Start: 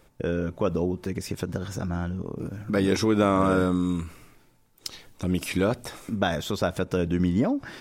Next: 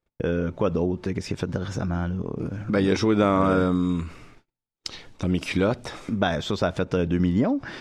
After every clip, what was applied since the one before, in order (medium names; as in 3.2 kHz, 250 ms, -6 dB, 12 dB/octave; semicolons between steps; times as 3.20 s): gate -53 dBFS, range -34 dB; low-pass 5.4 kHz 12 dB/octave; in parallel at -2.5 dB: compression, threshold -32 dBFS, peak gain reduction 14.5 dB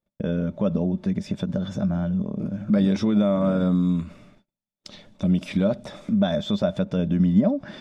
peak limiter -13.5 dBFS, peak gain reduction 5.5 dB; small resonant body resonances 200/590/3500 Hz, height 16 dB, ringing for 60 ms; trim -7 dB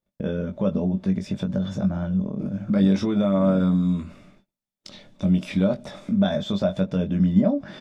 doubling 21 ms -5.5 dB; trim -1 dB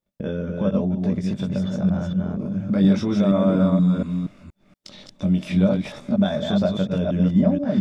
chunks repeated in reverse 237 ms, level -3 dB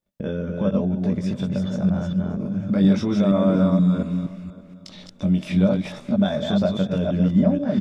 feedback delay 581 ms, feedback 26%, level -19.5 dB